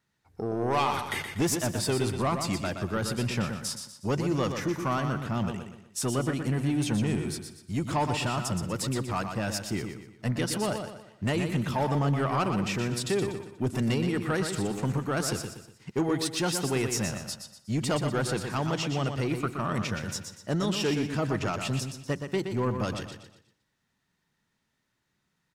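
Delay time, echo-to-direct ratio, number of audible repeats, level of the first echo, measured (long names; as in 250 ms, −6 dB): 121 ms, −6.0 dB, 6, −7.0 dB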